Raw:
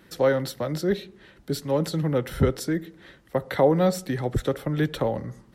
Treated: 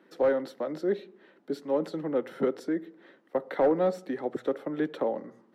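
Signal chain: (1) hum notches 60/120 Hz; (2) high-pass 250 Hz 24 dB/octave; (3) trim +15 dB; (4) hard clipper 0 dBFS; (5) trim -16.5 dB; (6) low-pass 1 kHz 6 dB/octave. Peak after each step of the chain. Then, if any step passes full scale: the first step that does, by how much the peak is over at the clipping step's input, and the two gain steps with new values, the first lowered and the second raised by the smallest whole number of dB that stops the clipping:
-7.0 dBFS, -8.0 dBFS, +7.0 dBFS, 0.0 dBFS, -16.5 dBFS, -16.5 dBFS; step 3, 7.0 dB; step 3 +8 dB, step 5 -9.5 dB

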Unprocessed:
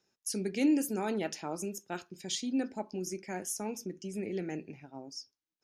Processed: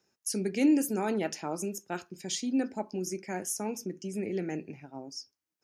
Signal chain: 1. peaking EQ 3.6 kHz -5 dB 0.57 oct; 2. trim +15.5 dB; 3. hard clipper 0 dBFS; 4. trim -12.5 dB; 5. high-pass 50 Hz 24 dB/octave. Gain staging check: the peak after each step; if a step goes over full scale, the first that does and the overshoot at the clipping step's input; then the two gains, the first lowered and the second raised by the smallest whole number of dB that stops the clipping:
-18.5 dBFS, -3.0 dBFS, -3.0 dBFS, -15.5 dBFS, -15.5 dBFS; nothing clips

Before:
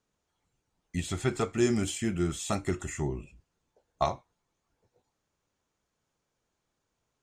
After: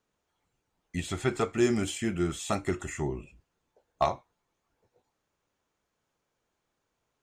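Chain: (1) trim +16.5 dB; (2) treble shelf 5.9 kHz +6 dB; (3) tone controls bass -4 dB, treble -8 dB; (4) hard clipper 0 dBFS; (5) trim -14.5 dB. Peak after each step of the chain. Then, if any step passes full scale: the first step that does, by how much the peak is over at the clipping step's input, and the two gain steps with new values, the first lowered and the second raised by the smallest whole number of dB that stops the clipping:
+3.5 dBFS, +4.0 dBFS, +3.0 dBFS, 0.0 dBFS, -14.5 dBFS; step 1, 3.0 dB; step 1 +13.5 dB, step 5 -11.5 dB

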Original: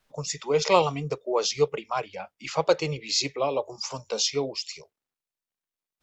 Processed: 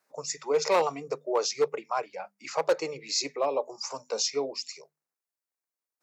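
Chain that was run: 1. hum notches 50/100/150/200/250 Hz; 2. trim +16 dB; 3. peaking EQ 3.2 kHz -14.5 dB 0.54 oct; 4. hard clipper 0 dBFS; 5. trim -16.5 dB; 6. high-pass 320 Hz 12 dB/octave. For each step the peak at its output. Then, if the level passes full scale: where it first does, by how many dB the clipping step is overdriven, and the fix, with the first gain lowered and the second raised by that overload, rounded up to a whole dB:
-6.5 dBFS, +9.5 dBFS, +9.5 dBFS, 0.0 dBFS, -16.5 dBFS, -11.5 dBFS; step 2, 9.5 dB; step 2 +6 dB, step 5 -6.5 dB

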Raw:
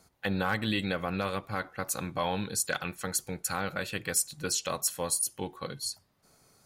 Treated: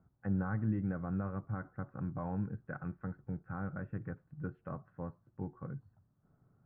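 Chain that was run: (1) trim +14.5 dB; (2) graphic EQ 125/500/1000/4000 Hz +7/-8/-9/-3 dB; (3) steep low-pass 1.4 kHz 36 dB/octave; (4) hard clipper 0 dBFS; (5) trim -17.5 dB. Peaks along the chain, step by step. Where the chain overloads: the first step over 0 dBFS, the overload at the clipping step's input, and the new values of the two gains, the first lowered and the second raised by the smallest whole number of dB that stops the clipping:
-0.5 dBFS, -1.0 dBFS, -5.5 dBFS, -5.5 dBFS, -23.0 dBFS; nothing clips

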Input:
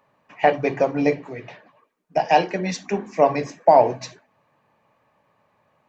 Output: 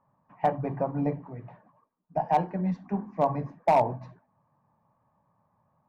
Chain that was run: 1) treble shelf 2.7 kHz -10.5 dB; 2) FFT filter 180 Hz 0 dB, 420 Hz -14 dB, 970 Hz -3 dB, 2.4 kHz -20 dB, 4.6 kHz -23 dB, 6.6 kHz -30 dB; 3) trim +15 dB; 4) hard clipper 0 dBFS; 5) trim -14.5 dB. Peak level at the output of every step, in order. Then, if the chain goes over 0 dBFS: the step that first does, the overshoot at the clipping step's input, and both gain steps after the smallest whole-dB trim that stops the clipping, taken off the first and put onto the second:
-3.5 dBFS, -10.0 dBFS, +5.0 dBFS, 0.0 dBFS, -14.5 dBFS; step 3, 5.0 dB; step 3 +10 dB, step 5 -9.5 dB

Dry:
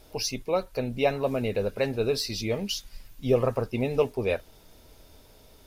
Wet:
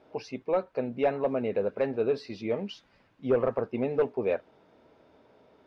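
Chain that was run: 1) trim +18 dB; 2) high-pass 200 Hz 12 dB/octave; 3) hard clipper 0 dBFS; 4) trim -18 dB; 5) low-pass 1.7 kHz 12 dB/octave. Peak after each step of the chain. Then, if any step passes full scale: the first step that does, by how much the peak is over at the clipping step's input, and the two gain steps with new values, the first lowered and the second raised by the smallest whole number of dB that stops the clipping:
+7.5 dBFS, +7.5 dBFS, 0.0 dBFS, -18.0 dBFS, -17.5 dBFS; step 1, 7.5 dB; step 1 +10 dB, step 4 -10 dB

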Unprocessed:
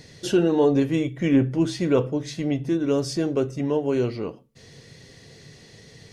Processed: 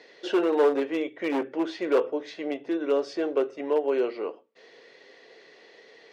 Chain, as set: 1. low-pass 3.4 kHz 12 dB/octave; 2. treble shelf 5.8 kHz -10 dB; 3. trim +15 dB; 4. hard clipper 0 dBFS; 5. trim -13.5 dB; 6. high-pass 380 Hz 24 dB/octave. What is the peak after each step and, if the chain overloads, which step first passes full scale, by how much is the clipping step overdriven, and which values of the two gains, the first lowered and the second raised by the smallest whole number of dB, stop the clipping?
-9.0 dBFS, -9.0 dBFS, +6.0 dBFS, 0.0 dBFS, -13.5 dBFS, -12.0 dBFS; step 3, 6.0 dB; step 3 +9 dB, step 5 -7.5 dB

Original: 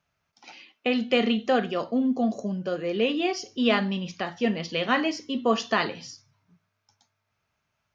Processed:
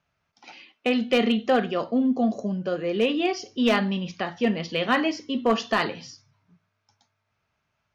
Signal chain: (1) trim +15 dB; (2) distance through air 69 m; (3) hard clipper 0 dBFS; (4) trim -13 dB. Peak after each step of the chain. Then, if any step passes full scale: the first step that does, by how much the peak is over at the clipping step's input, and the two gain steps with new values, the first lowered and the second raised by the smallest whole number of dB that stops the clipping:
+6.0 dBFS, +5.5 dBFS, 0.0 dBFS, -13.0 dBFS; step 1, 5.5 dB; step 1 +9 dB, step 4 -7 dB

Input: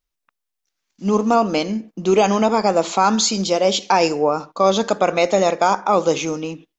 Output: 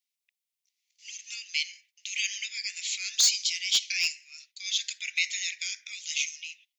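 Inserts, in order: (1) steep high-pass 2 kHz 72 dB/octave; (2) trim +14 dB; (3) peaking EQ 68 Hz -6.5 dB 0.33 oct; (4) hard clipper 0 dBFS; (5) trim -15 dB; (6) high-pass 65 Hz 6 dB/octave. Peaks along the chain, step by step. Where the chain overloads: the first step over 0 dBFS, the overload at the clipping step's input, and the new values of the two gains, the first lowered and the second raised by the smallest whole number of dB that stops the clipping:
-6.0 dBFS, +8.0 dBFS, +8.0 dBFS, 0.0 dBFS, -15.0 dBFS, -15.0 dBFS; step 2, 8.0 dB; step 2 +6 dB, step 5 -7 dB

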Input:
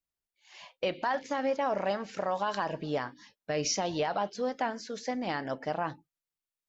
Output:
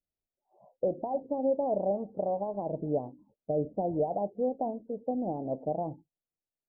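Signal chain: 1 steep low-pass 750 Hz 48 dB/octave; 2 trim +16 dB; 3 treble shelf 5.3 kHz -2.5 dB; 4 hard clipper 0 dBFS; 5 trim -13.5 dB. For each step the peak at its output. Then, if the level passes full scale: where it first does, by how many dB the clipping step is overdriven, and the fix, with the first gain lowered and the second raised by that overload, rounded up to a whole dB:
-21.5 dBFS, -5.5 dBFS, -5.5 dBFS, -5.5 dBFS, -19.0 dBFS; nothing clips

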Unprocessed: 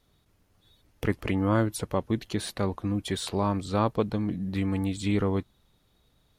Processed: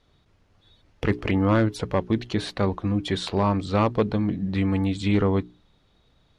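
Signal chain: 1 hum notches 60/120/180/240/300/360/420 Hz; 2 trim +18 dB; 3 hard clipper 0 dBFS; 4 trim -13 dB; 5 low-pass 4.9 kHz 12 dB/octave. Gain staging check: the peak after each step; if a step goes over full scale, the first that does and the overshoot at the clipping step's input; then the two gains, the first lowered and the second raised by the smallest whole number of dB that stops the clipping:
-12.0 dBFS, +6.0 dBFS, 0.0 dBFS, -13.0 dBFS, -12.5 dBFS; step 2, 6.0 dB; step 2 +12 dB, step 4 -7 dB

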